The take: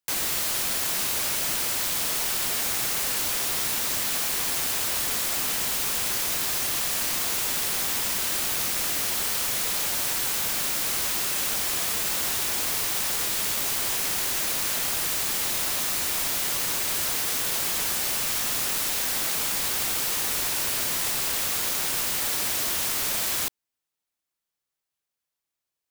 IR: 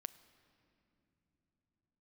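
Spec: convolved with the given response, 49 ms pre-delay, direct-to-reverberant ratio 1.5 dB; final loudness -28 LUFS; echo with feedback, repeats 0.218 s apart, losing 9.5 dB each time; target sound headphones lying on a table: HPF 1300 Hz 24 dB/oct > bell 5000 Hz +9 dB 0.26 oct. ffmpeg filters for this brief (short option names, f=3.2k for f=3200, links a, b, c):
-filter_complex "[0:a]aecho=1:1:218|436|654|872:0.335|0.111|0.0365|0.012,asplit=2[a][b];[1:a]atrim=start_sample=2205,adelay=49[c];[b][c]afir=irnorm=-1:irlink=0,volume=3dB[d];[a][d]amix=inputs=2:normalize=0,highpass=f=1.3k:w=0.5412,highpass=f=1.3k:w=1.3066,equalizer=f=5k:t=o:w=0.26:g=9,volume=-8dB"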